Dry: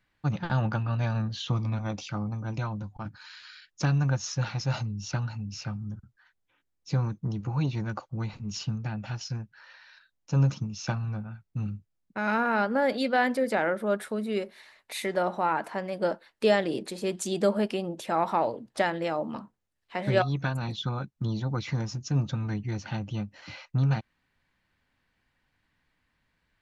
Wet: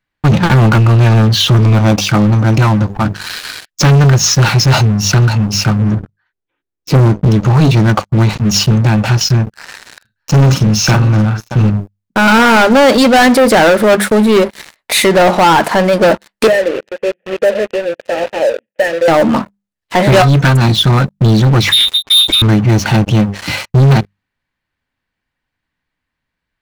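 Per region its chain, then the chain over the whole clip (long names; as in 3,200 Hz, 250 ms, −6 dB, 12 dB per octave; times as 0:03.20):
0:05.79–0:07.25: low-pass filter 3,500 Hz 6 dB per octave + parametric band 380 Hz +10 dB 0.55 octaves
0:09.42–0:11.70: double-tracking delay 47 ms −7.5 dB + single-tap delay 625 ms −18.5 dB
0:16.47–0:19.08: variable-slope delta modulation 16 kbit/s + formant filter e + mains-hum notches 60/120/180 Hz
0:21.69–0:22.42: low-shelf EQ 120 Hz −9.5 dB + voice inversion scrambler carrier 3,800 Hz
whole clip: mains-hum notches 50/100/150/200 Hz; leveller curve on the samples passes 5; level +7.5 dB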